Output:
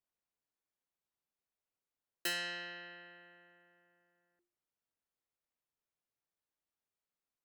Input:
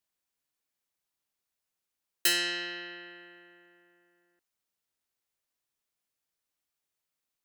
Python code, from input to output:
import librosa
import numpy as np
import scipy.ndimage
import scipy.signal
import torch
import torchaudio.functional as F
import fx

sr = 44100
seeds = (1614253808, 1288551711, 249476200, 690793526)

y = fx.high_shelf(x, sr, hz=2100.0, db=-11.5)
y = fx.hum_notches(y, sr, base_hz=50, count=7)
y = y * 10.0 ** (-2.5 / 20.0)